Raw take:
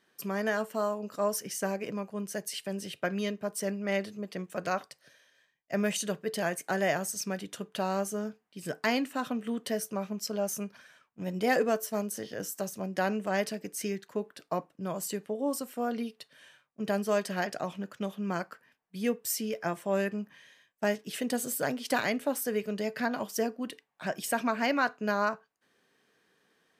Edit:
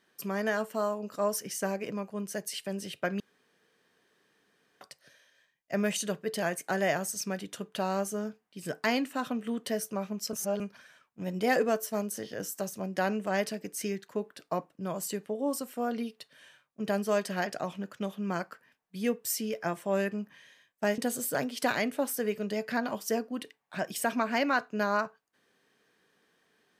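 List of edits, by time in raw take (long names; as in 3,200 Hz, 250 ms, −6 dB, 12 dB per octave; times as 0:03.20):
0:03.20–0:04.81: fill with room tone
0:10.33–0:10.60: reverse
0:20.98–0:21.26: remove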